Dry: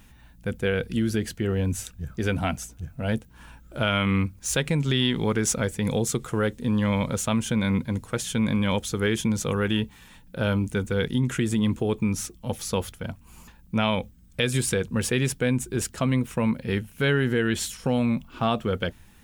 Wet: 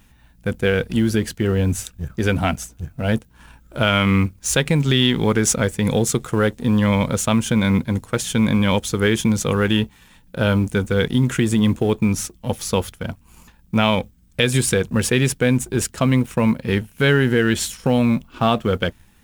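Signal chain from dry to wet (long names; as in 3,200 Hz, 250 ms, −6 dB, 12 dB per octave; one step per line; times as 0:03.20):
mu-law and A-law mismatch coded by A
level +7 dB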